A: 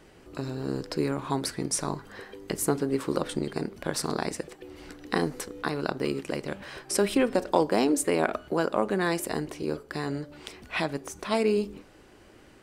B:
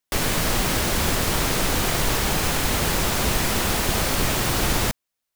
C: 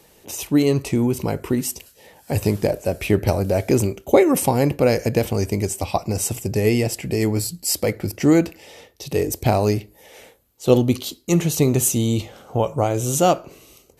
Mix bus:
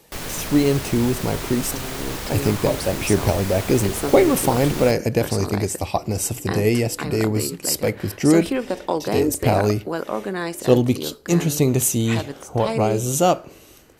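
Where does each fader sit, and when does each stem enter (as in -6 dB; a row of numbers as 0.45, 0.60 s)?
0.0, -8.0, -0.5 dB; 1.35, 0.00, 0.00 s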